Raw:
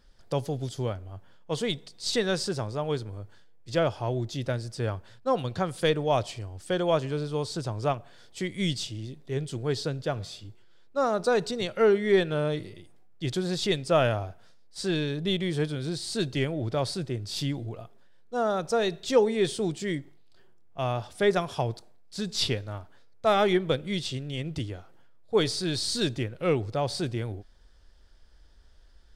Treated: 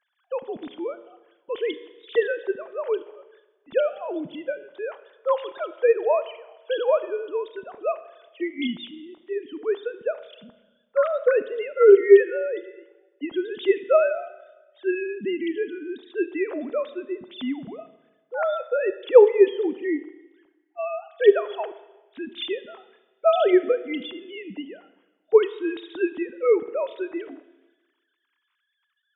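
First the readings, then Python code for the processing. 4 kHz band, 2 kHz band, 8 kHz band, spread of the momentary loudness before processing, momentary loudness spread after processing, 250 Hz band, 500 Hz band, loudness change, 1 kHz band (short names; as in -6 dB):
-7.5 dB, +1.5 dB, under -40 dB, 12 LU, 17 LU, +1.5 dB, +7.0 dB, +5.0 dB, -0.5 dB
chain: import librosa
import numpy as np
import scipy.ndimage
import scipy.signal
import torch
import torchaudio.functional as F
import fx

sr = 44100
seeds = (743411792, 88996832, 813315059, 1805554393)

y = fx.sine_speech(x, sr)
y = fx.rev_schroeder(y, sr, rt60_s=1.2, comb_ms=26, drr_db=13.5)
y = y * librosa.db_to_amplitude(4.5)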